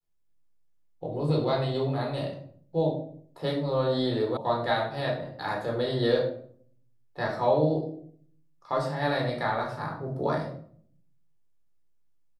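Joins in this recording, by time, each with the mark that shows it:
0:04.37: cut off before it has died away

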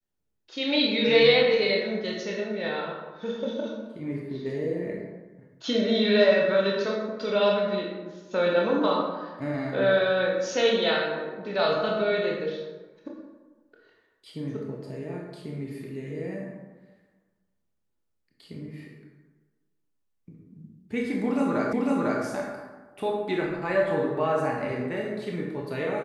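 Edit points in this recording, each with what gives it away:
0:21.73: the same again, the last 0.5 s

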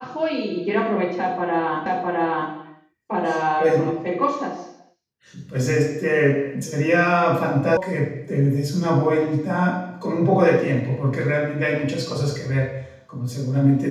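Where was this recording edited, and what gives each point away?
0:01.86: the same again, the last 0.66 s
0:07.77: cut off before it has died away

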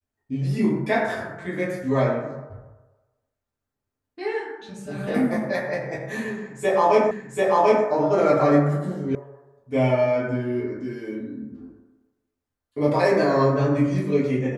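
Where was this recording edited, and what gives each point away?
0:07.11: the same again, the last 0.74 s
0:09.15: cut off before it has died away

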